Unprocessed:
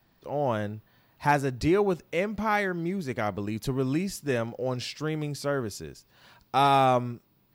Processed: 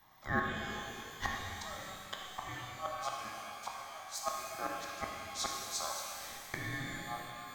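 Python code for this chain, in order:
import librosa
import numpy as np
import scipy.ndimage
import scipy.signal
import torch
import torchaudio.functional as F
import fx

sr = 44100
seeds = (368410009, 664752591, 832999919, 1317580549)

y = fx.low_shelf(x, sr, hz=210.0, db=-5.5)
y = fx.fixed_phaser(y, sr, hz=2500.0, stages=8)
y = fx.gate_flip(y, sr, shuts_db=-28.0, range_db=-25)
y = y * np.sin(2.0 * np.pi * 950.0 * np.arange(len(y)) / sr)
y = fx.rev_shimmer(y, sr, seeds[0], rt60_s=2.5, semitones=12, shimmer_db=-8, drr_db=-1.0)
y = y * librosa.db_to_amplitude(7.5)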